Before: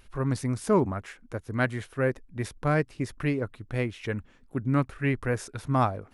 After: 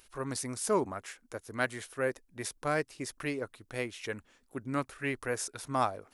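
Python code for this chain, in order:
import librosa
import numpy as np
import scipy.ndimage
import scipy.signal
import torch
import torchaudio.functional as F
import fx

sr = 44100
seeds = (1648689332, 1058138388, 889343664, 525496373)

y = fx.bass_treble(x, sr, bass_db=-12, treble_db=10)
y = y * librosa.db_to_amplitude(-3.5)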